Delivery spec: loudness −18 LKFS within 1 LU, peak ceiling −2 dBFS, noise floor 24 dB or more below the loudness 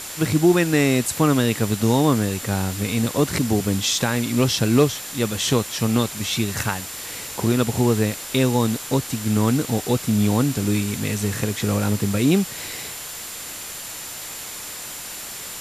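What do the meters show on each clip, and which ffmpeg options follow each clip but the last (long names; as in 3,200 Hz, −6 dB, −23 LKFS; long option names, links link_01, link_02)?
interfering tone 7,200 Hz; level of the tone −39 dBFS; background noise floor −34 dBFS; target noise floor −46 dBFS; integrated loudness −22.0 LKFS; sample peak −5.5 dBFS; target loudness −18.0 LKFS
→ -af "bandreject=frequency=7200:width=30"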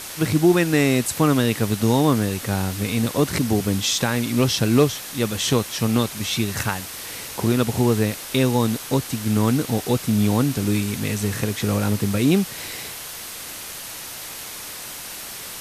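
interfering tone none found; background noise floor −35 dBFS; target noise floor −46 dBFS
→ -af "afftdn=noise_reduction=11:noise_floor=-35"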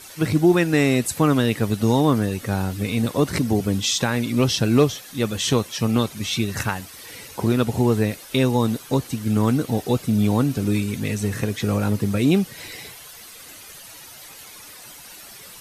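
background noise floor −42 dBFS; target noise floor −46 dBFS
→ -af "afftdn=noise_reduction=6:noise_floor=-42"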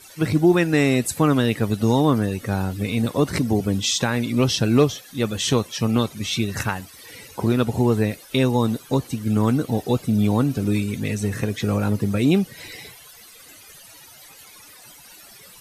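background noise floor −46 dBFS; integrated loudness −21.5 LKFS; sample peak −6.5 dBFS; target loudness −18.0 LKFS
→ -af "volume=3.5dB"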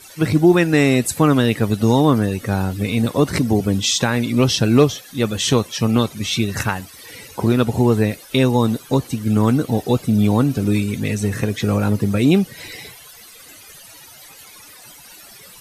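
integrated loudness −18.0 LKFS; sample peak −3.0 dBFS; background noise floor −43 dBFS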